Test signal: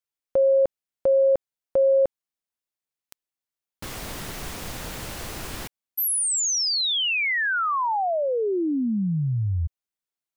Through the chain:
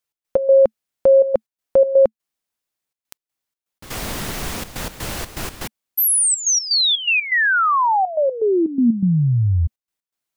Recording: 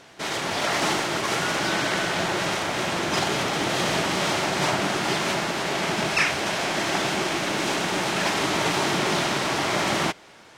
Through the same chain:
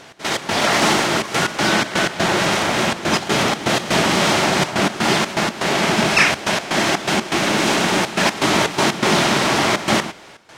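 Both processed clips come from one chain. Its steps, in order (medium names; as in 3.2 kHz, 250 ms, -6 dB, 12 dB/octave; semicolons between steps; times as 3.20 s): trance gate "x.x.xxxxxx.x.x" 123 bpm -12 dB; dynamic bell 220 Hz, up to +6 dB, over -49 dBFS, Q 5.6; trim +7.5 dB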